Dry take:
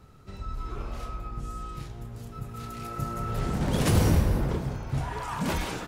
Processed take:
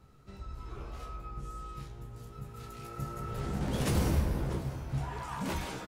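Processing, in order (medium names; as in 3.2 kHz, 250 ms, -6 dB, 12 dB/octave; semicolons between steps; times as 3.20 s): doubling 15 ms -6.5 dB; delay 648 ms -17.5 dB; trim -7 dB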